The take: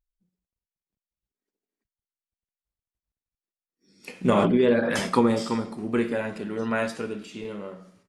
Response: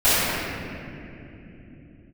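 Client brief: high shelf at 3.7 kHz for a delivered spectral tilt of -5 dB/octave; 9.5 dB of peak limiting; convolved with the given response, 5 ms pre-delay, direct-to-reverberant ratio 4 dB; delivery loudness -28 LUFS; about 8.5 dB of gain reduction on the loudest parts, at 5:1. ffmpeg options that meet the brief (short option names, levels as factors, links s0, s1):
-filter_complex "[0:a]highshelf=f=3700:g=7.5,acompressor=threshold=0.0562:ratio=5,alimiter=limit=0.0668:level=0:latency=1,asplit=2[s0][s1];[1:a]atrim=start_sample=2205,adelay=5[s2];[s1][s2]afir=irnorm=-1:irlink=0,volume=0.0422[s3];[s0][s3]amix=inputs=2:normalize=0,volume=1.58"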